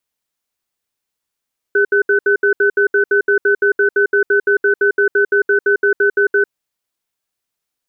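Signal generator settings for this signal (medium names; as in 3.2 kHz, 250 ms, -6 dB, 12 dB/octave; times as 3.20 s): cadence 405 Hz, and 1.51 kHz, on 0.10 s, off 0.07 s, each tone -12.5 dBFS 4.76 s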